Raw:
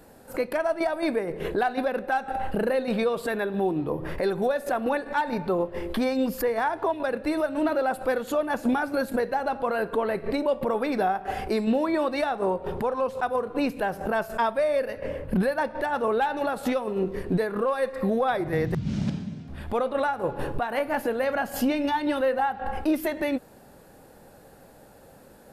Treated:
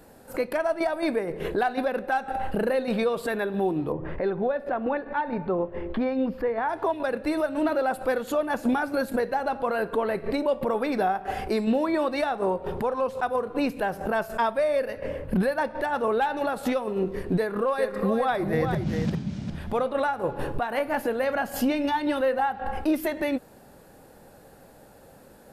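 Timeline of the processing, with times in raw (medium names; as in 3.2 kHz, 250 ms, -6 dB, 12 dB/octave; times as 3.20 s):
3.92–6.69 s: distance through air 410 m
17.38–19.86 s: delay 402 ms -6.5 dB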